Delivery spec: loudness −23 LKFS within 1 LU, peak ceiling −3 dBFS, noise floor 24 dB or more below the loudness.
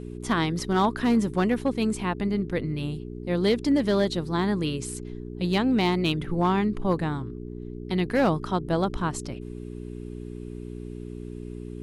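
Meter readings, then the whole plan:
share of clipped samples 0.5%; peaks flattened at −15.0 dBFS; mains hum 60 Hz; hum harmonics up to 420 Hz; level of the hum −34 dBFS; integrated loudness −26.0 LKFS; sample peak −15.0 dBFS; target loudness −23.0 LKFS
→ clipped peaks rebuilt −15 dBFS
hum removal 60 Hz, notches 7
level +3 dB

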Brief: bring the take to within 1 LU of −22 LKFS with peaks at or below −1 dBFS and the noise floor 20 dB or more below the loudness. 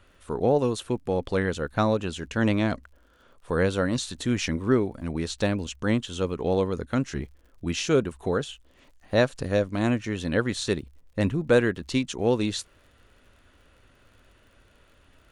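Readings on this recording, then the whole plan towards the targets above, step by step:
crackle rate 55 per second; integrated loudness −26.5 LKFS; sample peak −7.5 dBFS; target loudness −22.0 LKFS
→ click removal
level +4.5 dB

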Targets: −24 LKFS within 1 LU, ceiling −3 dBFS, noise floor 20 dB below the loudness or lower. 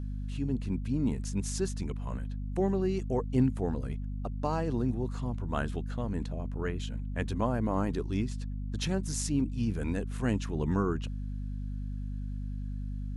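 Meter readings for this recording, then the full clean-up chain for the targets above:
mains hum 50 Hz; hum harmonics up to 250 Hz; level of the hum −33 dBFS; integrated loudness −33.0 LKFS; sample peak −15.0 dBFS; target loudness −24.0 LKFS
→ hum removal 50 Hz, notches 5
level +9 dB

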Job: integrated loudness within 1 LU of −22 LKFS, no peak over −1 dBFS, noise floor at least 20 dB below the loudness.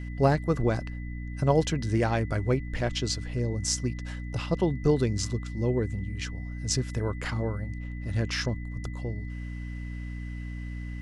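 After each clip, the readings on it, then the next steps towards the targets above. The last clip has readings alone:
mains hum 60 Hz; hum harmonics up to 300 Hz; level of the hum −33 dBFS; interfering tone 2,000 Hz; level of the tone −48 dBFS; integrated loudness −29.5 LKFS; sample peak −10.0 dBFS; target loudness −22.0 LKFS
→ hum removal 60 Hz, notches 5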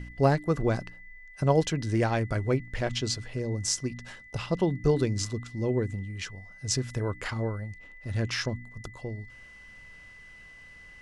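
mains hum none found; interfering tone 2,000 Hz; level of the tone −48 dBFS
→ notch filter 2,000 Hz, Q 30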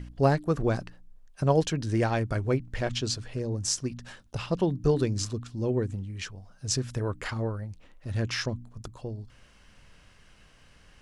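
interfering tone none found; integrated loudness −29.5 LKFS; sample peak −10.5 dBFS; target loudness −22.0 LKFS
→ level +7.5 dB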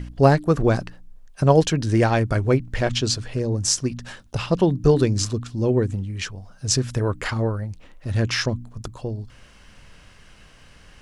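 integrated loudness −22.0 LKFS; sample peak −3.0 dBFS; background noise floor −50 dBFS

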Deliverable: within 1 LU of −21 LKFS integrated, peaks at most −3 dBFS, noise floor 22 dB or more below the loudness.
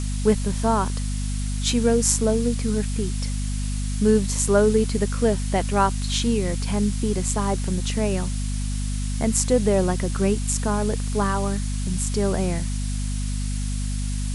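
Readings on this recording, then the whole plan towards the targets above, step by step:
mains hum 50 Hz; hum harmonics up to 250 Hz; level of the hum −23 dBFS; background noise floor −26 dBFS; target noise floor −46 dBFS; integrated loudness −23.5 LKFS; sample peak −3.5 dBFS; target loudness −21.0 LKFS
→ hum removal 50 Hz, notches 5
noise reduction from a noise print 20 dB
level +2.5 dB
brickwall limiter −3 dBFS

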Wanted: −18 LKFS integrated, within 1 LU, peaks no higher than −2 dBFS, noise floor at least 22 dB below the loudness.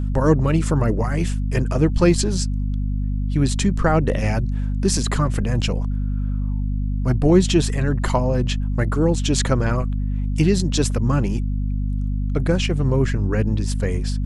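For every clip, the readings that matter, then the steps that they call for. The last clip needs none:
mains hum 50 Hz; hum harmonics up to 250 Hz; level of the hum −20 dBFS; integrated loudness −21.0 LKFS; sample peak −2.5 dBFS; target loudness −18.0 LKFS
→ mains-hum notches 50/100/150/200/250 Hz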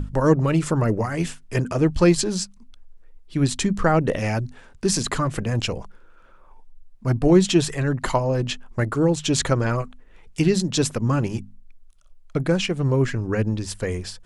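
mains hum none found; integrated loudness −22.5 LKFS; sample peak −5.0 dBFS; target loudness −18.0 LKFS
→ level +4.5 dB
brickwall limiter −2 dBFS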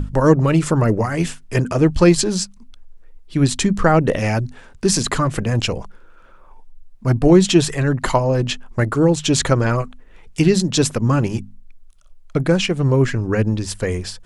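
integrated loudness −18.0 LKFS; sample peak −2.0 dBFS; background noise floor −45 dBFS

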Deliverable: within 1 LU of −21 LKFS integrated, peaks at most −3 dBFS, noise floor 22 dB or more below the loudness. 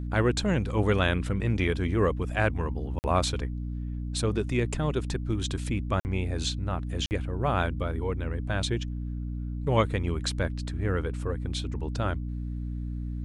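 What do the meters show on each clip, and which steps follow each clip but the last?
number of dropouts 3; longest dropout 49 ms; mains hum 60 Hz; hum harmonics up to 300 Hz; level of the hum −30 dBFS; integrated loudness −29.0 LKFS; sample peak −10.5 dBFS; target loudness −21.0 LKFS
→ repair the gap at 0:02.99/0:06.00/0:07.06, 49 ms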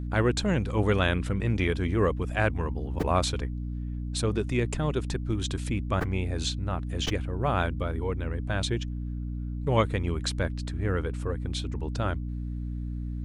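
number of dropouts 0; mains hum 60 Hz; hum harmonics up to 300 Hz; level of the hum −30 dBFS
→ hum removal 60 Hz, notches 5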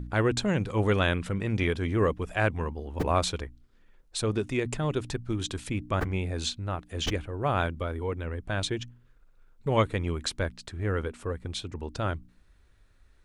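mains hum none found; integrated loudness −30.0 LKFS; sample peak −11.0 dBFS; target loudness −21.0 LKFS
→ level +9 dB
brickwall limiter −3 dBFS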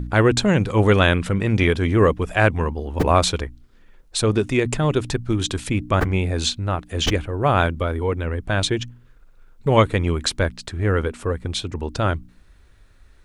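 integrated loudness −21.0 LKFS; sample peak −3.0 dBFS; background noise floor −51 dBFS

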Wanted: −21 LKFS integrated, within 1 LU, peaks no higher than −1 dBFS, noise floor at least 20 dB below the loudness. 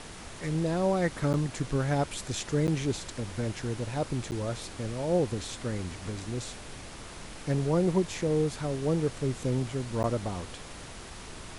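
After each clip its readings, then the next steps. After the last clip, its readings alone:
number of dropouts 4; longest dropout 9.6 ms; background noise floor −44 dBFS; target noise floor −51 dBFS; integrated loudness −30.5 LKFS; sample peak −14.5 dBFS; target loudness −21.0 LKFS
→ repair the gap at 0:01.33/0:02.67/0:04.31/0:10.03, 9.6 ms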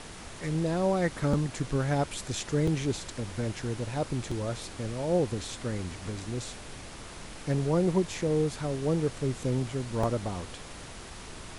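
number of dropouts 0; background noise floor −44 dBFS; target noise floor −51 dBFS
→ noise reduction from a noise print 7 dB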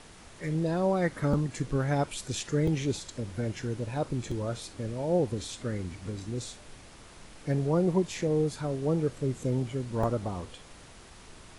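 background noise floor −51 dBFS; integrated loudness −30.5 LKFS; sample peak −13.0 dBFS; target loudness −21.0 LKFS
→ level +9.5 dB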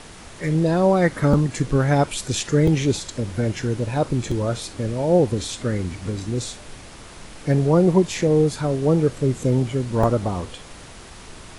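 integrated loudness −21.0 LKFS; sample peak −3.5 dBFS; background noise floor −41 dBFS

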